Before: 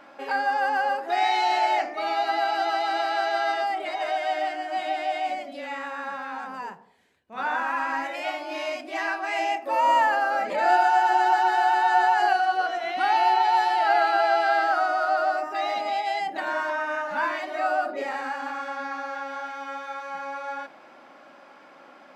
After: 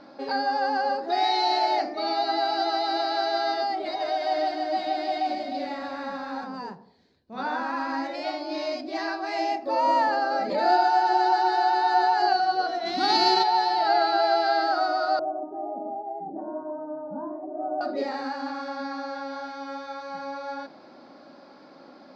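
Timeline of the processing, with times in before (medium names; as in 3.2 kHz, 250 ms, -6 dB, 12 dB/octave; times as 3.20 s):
3.90–6.44 s: bit-crushed delay 307 ms, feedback 35%, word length 9-bit, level -6 dB
12.85–13.42 s: formants flattened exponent 0.6
15.19–17.81 s: Bessel low-pass 560 Hz, order 6
whole clip: FFT filter 270 Hz 0 dB, 1.1 kHz -11 dB, 3 kHz -16 dB, 4.4 kHz +3 dB, 8.8 kHz -26 dB; trim +7.5 dB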